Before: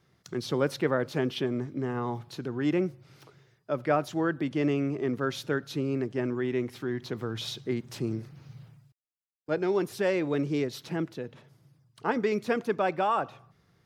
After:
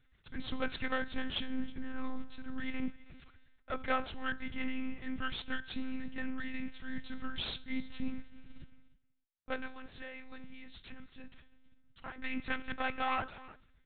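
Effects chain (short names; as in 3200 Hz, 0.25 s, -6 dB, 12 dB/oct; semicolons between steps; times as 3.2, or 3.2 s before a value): Chebyshev band-stop 220–570 Hz, order 2; band shelf 520 Hz -10.5 dB 2.5 oct; 9.66–12.23 compressor 6:1, threshold -44 dBFS, peak gain reduction 13.5 dB; resonator 120 Hz, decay 0.67 s, harmonics all, mix 60%; added harmonics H 6 -17 dB, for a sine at -26.5 dBFS; echo 0.323 s -20.5 dB; monotone LPC vocoder at 8 kHz 260 Hz; gain +8 dB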